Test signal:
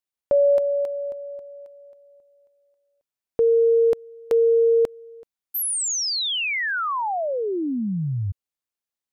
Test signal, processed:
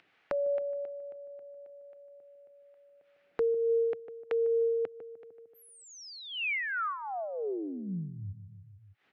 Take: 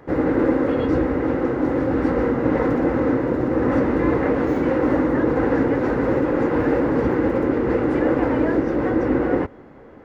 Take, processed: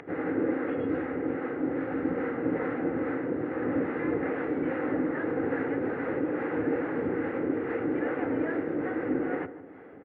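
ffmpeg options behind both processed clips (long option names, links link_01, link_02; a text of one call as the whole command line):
ffmpeg -i in.wav -filter_complex "[0:a]aemphasis=mode=production:type=50fm,acrossover=split=590[link_01][link_02];[link_01]aeval=exprs='val(0)*(1-0.5/2+0.5/2*cos(2*PI*2.4*n/s))':channel_layout=same[link_03];[link_02]aeval=exprs='val(0)*(1-0.5/2-0.5/2*cos(2*PI*2.4*n/s))':channel_layout=same[link_04];[link_03][link_04]amix=inputs=2:normalize=0,highpass=frequency=110:width=0.5412,highpass=frequency=110:width=1.3066,equalizer=frequency=130:width_type=q:width=4:gain=-10,equalizer=frequency=220:width_type=q:width=4:gain=-8,equalizer=frequency=350:width_type=q:width=4:gain=-3,equalizer=frequency=570:width_type=q:width=4:gain=-6,equalizer=frequency=1000:width_type=q:width=4:gain=-10,lowpass=frequency=2400:width=0.5412,lowpass=frequency=2400:width=1.3066,asplit=2[link_05][link_06];[link_06]adelay=151,lowpass=frequency=1100:poles=1,volume=-12.5dB,asplit=2[link_07][link_08];[link_08]adelay=151,lowpass=frequency=1100:poles=1,volume=0.44,asplit=2[link_09][link_10];[link_10]adelay=151,lowpass=frequency=1100:poles=1,volume=0.44,asplit=2[link_11][link_12];[link_12]adelay=151,lowpass=frequency=1100:poles=1,volume=0.44[link_13];[link_05][link_07][link_09][link_11][link_13]amix=inputs=5:normalize=0,acompressor=mode=upward:threshold=-39dB:ratio=2.5:release=101:knee=2.83:detection=peak,volume=-4dB" -ar 48000 -c:a libopus -b:a 96k out.opus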